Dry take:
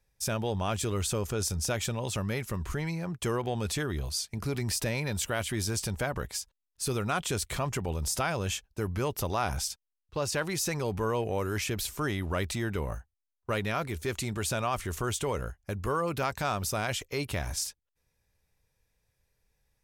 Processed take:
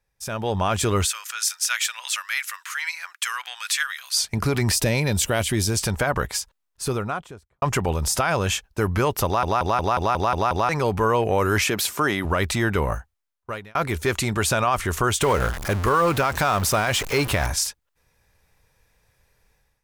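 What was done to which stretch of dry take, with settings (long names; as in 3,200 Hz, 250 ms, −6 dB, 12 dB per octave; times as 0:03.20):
0:01.05–0:04.16: high-pass filter 1,500 Hz 24 dB per octave
0:04.75–0:05.77: parametric band 1,300 Hz −9 dB 1.7 octaves
0:06.31–0:07.62: fade out and dull
0:09.25: stutter in place 0.18 s, 8 plays
0:11.64–0:12.25: high-pass filter 170 Hz
0:12.85–0:13.75: fade out
0:15.21–0:17.47: converter with a step at zero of −34.5 dBFS
whole clip: parametric band 1,200 Hz +6 dB 2 octaves; automatic gain control gain up to 14 dB; brickwall limiter −7.5 dBFS; level −3.5 dB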